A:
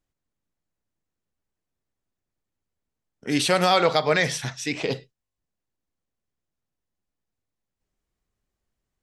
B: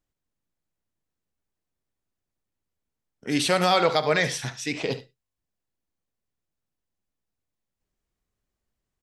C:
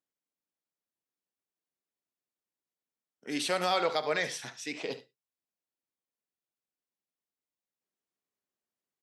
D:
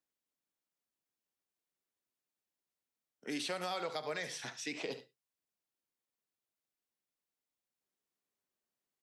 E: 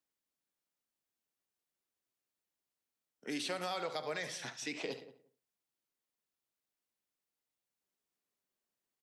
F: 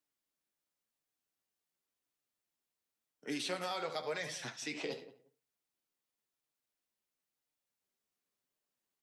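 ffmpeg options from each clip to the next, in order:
-af "aecho=1:1:72:0.178,volume=-1.5dB"
-af "highpass=250,volume=-7.5dB"
-filter_complex "[0:a]acrossover=split=160|7100[a][b][c];[a]acompressor=threshold=-57dB:ratio=4[d];[b]acompressor=threshold=-37dB:ratio=4[e];[c]acompressor=threshold=-55dB:ratio=4[f];[d][e][f]amix=inputs=3:normalize=0"
-filter_complex "[0:a]asplit=2[a][b];[b]adelay=178,lowpass=f=950:p=1,volume=-13.5dB,asplit=2[c][d];[d]adelay=178,lowpass=f=950:p=1,volume=0.15[e];[a][c][e]amix=inputs=3:normalize=0"
-af "flanger=delay=6.6:depth=7.1:regen=43:speed=0.93:shape=sinusoidal,volume=4dB"

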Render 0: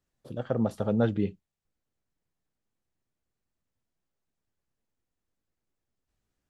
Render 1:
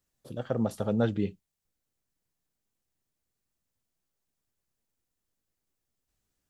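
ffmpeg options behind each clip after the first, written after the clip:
-af "highshelf=f=4.5k:g=9.5,volume=-1.5dB"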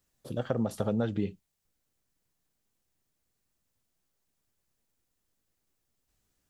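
-af "acompressor=threshold=-29dB:ratio=6,volume=4dB"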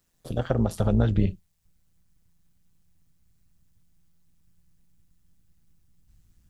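-af "tremolo=f=170:d=0.667,asubboost=boost=9:cutoff=160,volume=7.5dB"

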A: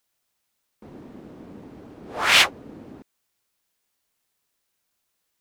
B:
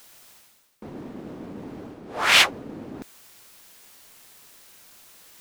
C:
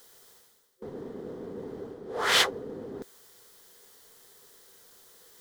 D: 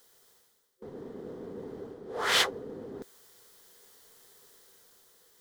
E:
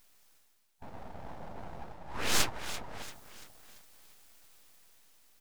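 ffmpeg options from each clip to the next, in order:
-af "equalizer=f=60:t=o:w=1.1:g=-5,areverse,acompressor=mode=upward:threshold=-30dB:ratio=2.5,areverse"
-af "superequalizer=7b=3.16:12b=0.398,volume=-5dB"
-af "dynaudnorm=f=250:g=7:m=4.5dB,volume=-6.5dB"
-filter_complex "[0:a]asplit=6[a][b][c][d][e][f];[b]adelay=340,afreqshift=-30,volume=-13dB[g];[c]adelay=680,afreqshift=-60,volume=-19.2dB[h];[d]adelay=1020,afreqshift=-90,volume=-25.4dB[i];[e]adelay=1360,afreqshift=-120,volume=-31.6dB[j];[f]adelay=1700,afreqshift=-150,volume=-37.8dB[k];[a][g][h][i][j][k]amix=inputs=6:normalize=0,aeval=exprs='abs(val(0))':c=same"

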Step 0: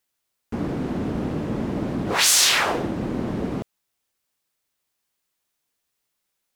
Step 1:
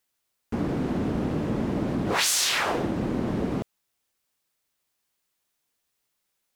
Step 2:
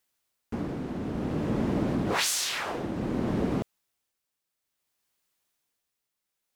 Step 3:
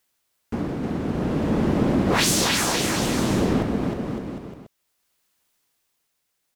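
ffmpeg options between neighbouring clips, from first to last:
-af "acompressor=threshold=-21dB:ratio=5"
-af "tremolo=f=0.57:d=0.56"
-af "aecho=1:1:310|558|756.4|915.1|1042:0.631|0.398|0.251|0.158|0.1,volume=5.5dB"

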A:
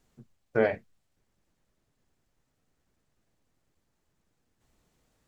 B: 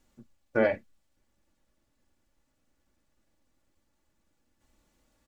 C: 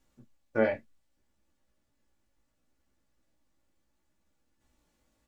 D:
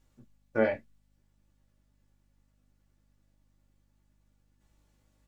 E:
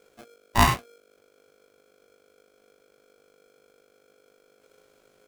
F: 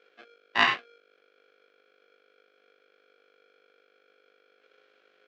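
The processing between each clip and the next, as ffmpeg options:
-af "aecho=1:1:3.5:0.5"
-af "flanger=delay=15:depth=3.3:speed=0.68"
-af "aeval=exprs='val(0)+0.000355*(sin(2*PI*50*n/s)+sin(2*PI*2*50*n/s)/2+sin(2*PI*3*50*n/s)/3+sin(2*PI*4*50*n/s)/4+sin(2*PI*5*50*n/s)/5)':c=same"
-af "aeval=exprs='val(0)*sgn(sin(2*PI*470*n/s))':c=same,volume=7dB"
-af "highpass=470,equalizer=f=620:t=q:w=4:g=-6,equalizer=f=930:t=q:w=4:g=-9,equalizer=f=1.7k:t=q:w=4:g=6,equalizer=f=2.8k:t=q:w=4:g=4,lowpass=f=4.1k:w=0.5412,lowpass=f=4.1k:w=1.3066"

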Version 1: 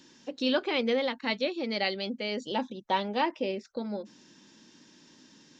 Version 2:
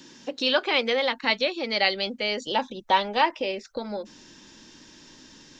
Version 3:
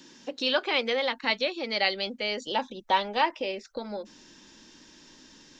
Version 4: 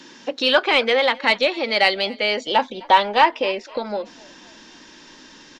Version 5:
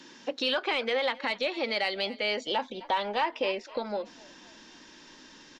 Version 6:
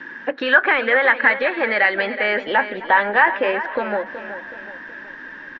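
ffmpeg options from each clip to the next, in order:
-filter_complex "[0:a]asubboost=boost=9:cutoff=62,acrossover=split=560|760[a][b][c];[a]acompressor=threshold=-41dB:ratio=6[d];[d][b][c]amix=inputs=3:normalize=0,volume=8dB"
-af "equalizer=f=110:t=o:w=0.73:g=-6,volume=-3dB"
-filter_complex "[0:a]asplit=2[a][b];[b]highpass=f=720:p=1,volume=8dB,asoftclip=type=tanh:threshold=-10.5dB[c];[a][c]amix=inputs=2:normalize=0,lowpass=f=2.3k:p=1,volume=-6dB,asplit=4[d][e][f][g];[e]adelay=258,afreqshift=49,volume=-23.5dB[h];[f]adelay=516,afreqshift=98,volume=-30.1dB[i];[g]adelay=774,afreqshift=147,volume=-36.6dB[j];[d][h][i][j]amix=inputs=4:normalize=0,volume=9dB"
-af "alimiter=limit=-12.5dB:level=0:latency=1:release=119,volume=-6.5dB"
-af "lowpass=f=1.7k:t=q:w=7.6,aecho=1:1:373|746|1119|1492|1865:0.251|0.113|0.0509|0.0229|0.0103,volume=8dB"

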